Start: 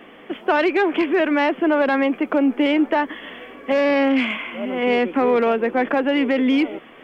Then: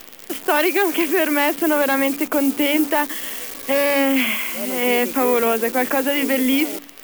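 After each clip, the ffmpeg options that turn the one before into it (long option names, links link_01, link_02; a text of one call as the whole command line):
ffmpeg -i in.wav -af "acrusher=bits=7:dc=4:mix=0:aa=0.000001,aemphasis=mode=production:type=75fm,bandreject=frequency=47.47:width_type=h:width=4,bandreject=frequency=94.94:width_type=h:width=4,bandreject=frequency=142.41:width_type=h:width=4,bandreject=frequency=189.88:width_type=h:width=4,bandreject=frequency=237.35:width_type=h:width=4,bandreject=frequency=284.82:width_type=h:width=4" out.wav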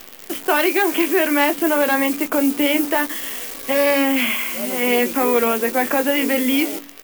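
ffmpeg -i in.wav -filter_complex "[0:a]asplit=2[link_01][link_02];[link_02]adelay=21,volume=-8.5dB[link_03];[link_01][link_03]amix=inputs=2:normalize=0" out.wav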